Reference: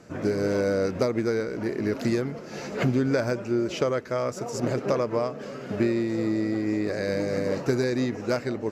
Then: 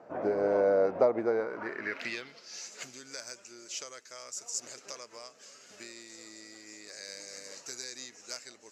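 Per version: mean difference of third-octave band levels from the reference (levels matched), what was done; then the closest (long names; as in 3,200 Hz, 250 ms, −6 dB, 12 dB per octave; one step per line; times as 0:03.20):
11.0 dB: band-pass filter sweep 740 Hz → 7,100 Hz, 0:01.35–0:02.67
level +6.5 dB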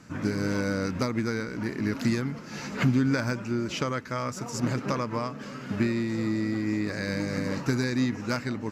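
3.5 dB: flat-topped bell 510 Hz −10 dB 1.3 octaves
level +1.5 dB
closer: second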